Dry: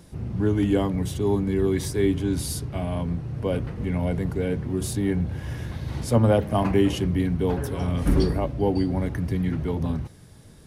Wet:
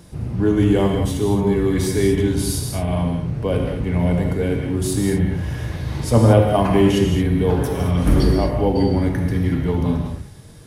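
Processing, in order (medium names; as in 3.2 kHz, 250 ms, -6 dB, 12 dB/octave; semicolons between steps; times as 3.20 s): gated-style reverb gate 250 ms flat, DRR 1.5 dB; trim +4 dB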